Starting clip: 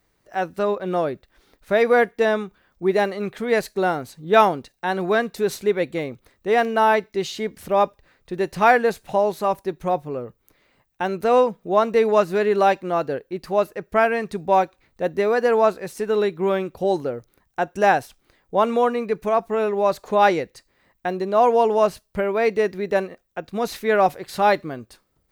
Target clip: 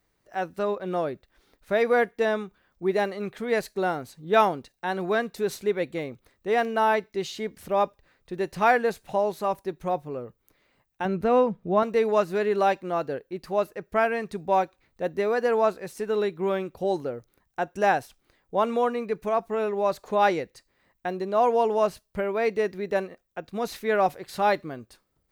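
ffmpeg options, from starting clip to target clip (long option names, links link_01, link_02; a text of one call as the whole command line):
ffmpeg -i in.wav -filter_complex "[0:a]asettb=1/sr,asplit=3[link_01][link_02][link_03];[link_01]atrim=end=11.054[link_04];[link_02]atrim=start=11.05:end=11.83,asetpts=PTS-STARTPTS,afade=type=in:duration=0.004:curve=qsin,afade=type=out:start_time=0.776:duration=0.004:curve=qsin,bass=frequency=250:gain=11,treble=frequency=4000:gain=-9[link_05];[link_03]atrim=start=11.826[link_06];[link_04][link_05]acrossfade=duration=0.004:curve1=hsin:curve2=qsin[link_07];[link_07][link_06]acrossfade=duration=0.004:curve1=qsin:curve2=hsin,volume=-5dB" out.wav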